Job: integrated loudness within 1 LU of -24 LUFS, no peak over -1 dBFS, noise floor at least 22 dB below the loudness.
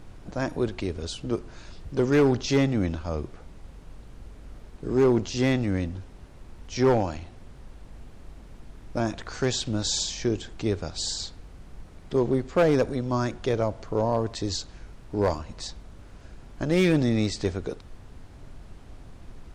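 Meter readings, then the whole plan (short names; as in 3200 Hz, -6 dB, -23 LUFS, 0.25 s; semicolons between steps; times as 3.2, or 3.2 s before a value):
clipped 0.5%; flat tops at -14.5 dBFS; noise floor -47 dBFS; noise floor target -49 dBFS; loudness -26.5 LUFS; peak -14.5 dBFS; loudness target -24.0 LUFS
-> clip repair -14.5 dBFS; noise print and reduce 6 dB; gain +2.5 dB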